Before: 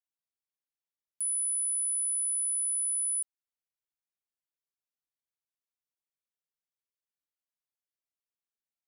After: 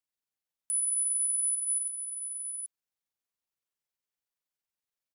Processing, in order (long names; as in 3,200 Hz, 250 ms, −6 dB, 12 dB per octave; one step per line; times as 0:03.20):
time stretch by overlap-add 0.58×, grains 93 ms
single-tap delay 782 ms −8.5 dB
level +2.5 dB